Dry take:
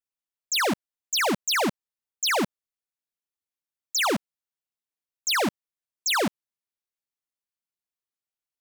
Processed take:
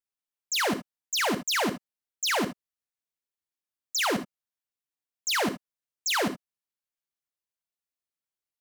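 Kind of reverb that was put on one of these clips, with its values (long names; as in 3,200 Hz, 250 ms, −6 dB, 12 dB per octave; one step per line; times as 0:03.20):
reverb whose tail is shaped and stops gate 90 ms rising, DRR 8.5 dB
level −3 dB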